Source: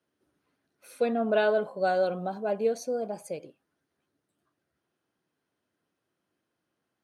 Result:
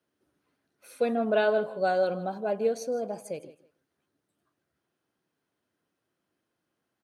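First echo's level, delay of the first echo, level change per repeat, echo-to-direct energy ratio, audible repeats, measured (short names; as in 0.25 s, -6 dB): -17.5 dB, 0.159 s, -13.5 dB, -17.5 dB, 2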